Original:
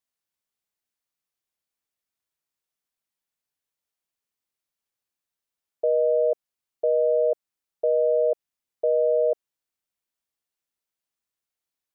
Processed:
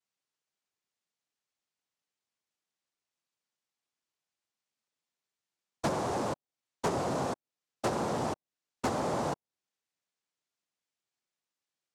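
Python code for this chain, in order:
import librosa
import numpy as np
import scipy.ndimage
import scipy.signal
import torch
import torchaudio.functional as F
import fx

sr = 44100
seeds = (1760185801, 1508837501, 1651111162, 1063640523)

y = fx.env_lowpass_down(x, sr, base_hz=310.0, full_db=-18.5)
y = fx.noise_vocoder(y, sr, seeds[0], bands=2)
y = 10.0 ** (-24.0 / 20.0) * np.tanh(y / 10.0 ** (-24.0 / 20.0))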